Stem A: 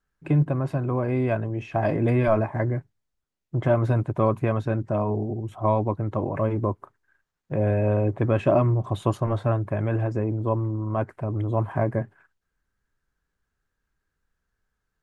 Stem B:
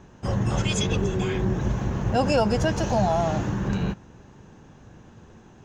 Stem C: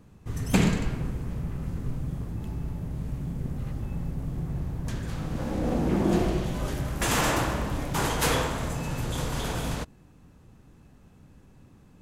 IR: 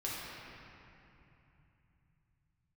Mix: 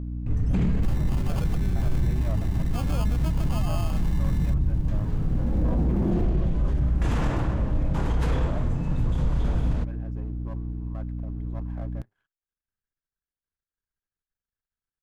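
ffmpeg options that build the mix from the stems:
-filter_complex "[0:a]aeval=exprs='if(lt(val(0),0),0.251*val(0),val(0))':channel_layout=same,volume=-15dB[link_01];[1:a]equalizer=frequency=470:width=1.4:gain=-8,acompressor=threshold=-34dB:ratio=4,acrusher=samples=23:mix=1:aa=0.000001,adelay=600,volume=1dB[link_02];[2:a]aemphasis=mode=reproduction:type=riaa,aeval=exprs='val(0)+0.0631*(sin(2*PI*60*n/s)+sin(2*PI*2*60*n/s)/2+sin(2*PI*3*60*n/s)/3+sin(2*PI*4*60*n/s)/4+sin(2*PI*5*60*n/s)/5)':channel_layout=same,volume=-6dB[link_03];[link_01][link_02][link_03]amix=inputs=3:normalize=0,alimiter=limit=-16dB:level=0:latency=1:release=14"

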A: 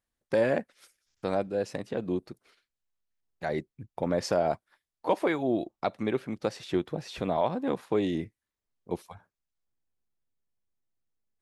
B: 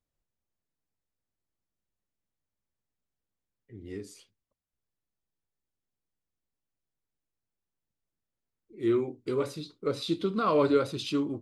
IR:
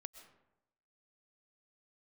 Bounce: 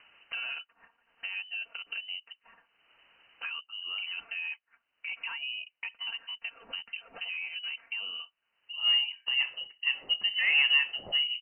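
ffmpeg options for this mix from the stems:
-filter_complex "[0:a]highpass=250,aecho=1:1:4.4:0.79,alimiter=limit=-19.5dB:level=0:latency=1:release=41,volume=-11dB[link_01];[1:a]highpass=frequency=220:width=0.5412,highpass=frequency=220:width=1.3066,asoftclip=type=tanh:threshold=-16.5dB,volume=1dB[link_02];[link_01][link_02]amix=inputs=2:normalize=0,acompressor=mode=upward:threshold=-31dB:ratio=2.5,lowpass=frequency=2700:width_type=q:width=0.5098,lowpass=frequency=2700:width_type=q:width=0.6013,lowpass=frequency=2700:width_type=q:width=0.9,lowpass=frequency=2700:width_type=q:width=2.563,afreqshift=-3200"

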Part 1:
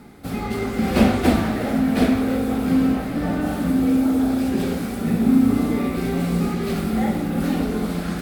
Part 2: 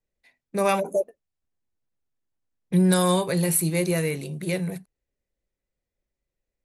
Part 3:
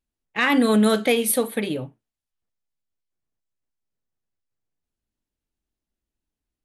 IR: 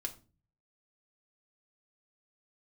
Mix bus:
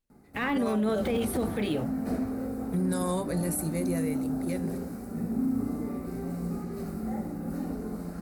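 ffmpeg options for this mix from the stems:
-filter_complex "[0:a]equalizer=frequency=2900:width=1:gain=-15,bandreject=frequency=3400:width=6.7,adelay=100,volume=-11.5dB[link_01];[1:a]equalizer=frequency=3000:width_type=o:width=1:gain=-10,volume=-7dB[link_02];[2:a]deesser=0.95,volume=-1.5dB[link_03];[link_01][link_02][link_03]amix=inputs=3:normalize=0,alimiter=limit=-20.5dB:level=0:latency=1:release=18"

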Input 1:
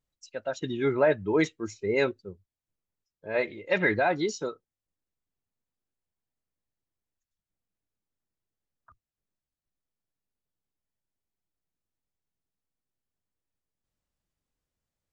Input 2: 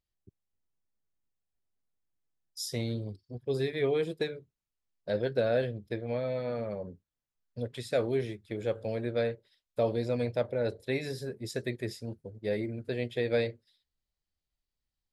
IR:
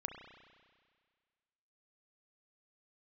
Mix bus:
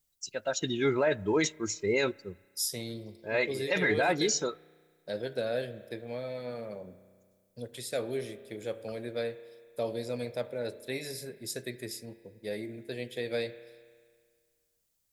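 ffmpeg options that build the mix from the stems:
-filter_complex "[0:a]highshelf=frequency=3200:gain=9.5,volume=-1dB,asplit=2[link_01][link_02];[link_02]volume=-21.5dB[link_03];[1:a]highpass=130,aemphasis=mode=production:type=cd,volume=-8dB,asplit=2[link_04][link_05];[link_05]volume=-3dB[link_06];[2:a]atrim=start_sample=2205[link_07];[link_03][link_06]amix=inputs=2:normalize=0[link_08];[link_08][link_07]afir=irnorm=-1:irlink=0[link_09];[link_01][link_04][link_09]amix=inputs=3:normalize=0,highshelf=frequency=6700:gain=9,alimiter=limit=-18dB:level=0:latency=1:release=12"

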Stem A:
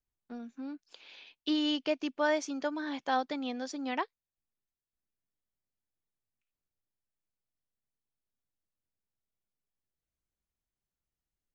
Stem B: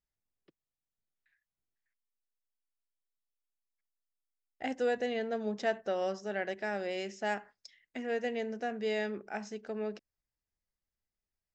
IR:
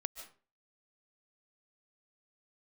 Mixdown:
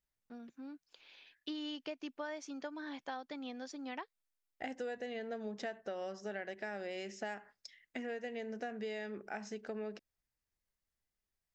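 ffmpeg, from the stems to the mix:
-filter_complex "[0:a]agate=range=-33dB:threshold=-57dB:ratio=3:detection=peak,volume=-7.5dB[link_01];[1:a]volume=0.5dB[link_02];[link_01][link_02]amix=inputs=2:normalize=0,equalizer=frequency=1800:width_type=o:width=0.77:gain=2,acompressor=threshold=-38dB:ratio=10"

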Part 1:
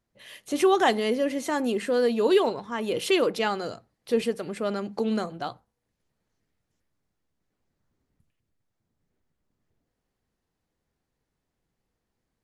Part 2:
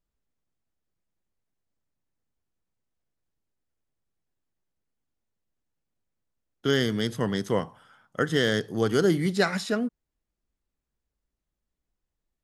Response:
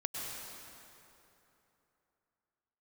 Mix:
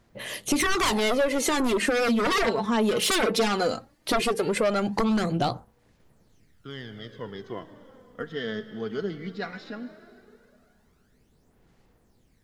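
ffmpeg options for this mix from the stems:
-filter_complex "[0:a]aeval=exprs='0.355*sin(PI/2*5.01*val(0)/0.355)':channel_layout=same,volume=-6dB,asplit=2[link_01][link_02];[1:a]lowpass=frequency=4500:width=0.5412,lowpass=frequency=4500:width=1.3066,volume=-12.5dB,asplit=2[link_03][link_04];[link_04]volume=-11.5dB[link_05];[link_02]apad=whole_len=548546[link_06];[link_03][link_06]sidechaincompress=threshold=-39dB:ratio=8:attack=16:release=1330[link_07];[2:a]atrim=start_sample=2205[link_08];[link_05][link_08]afir=irnorm=-1:irlink=0[link_09];[link_01][link_07][link_09]amix=inputs=3:normalize=0,aphaser=in_gain=1:out_gain=1:delay=4.7:decay=0.51:speed=0.17:type=sinusoidal,acompressor=threshold=-21dB:ratio=5"

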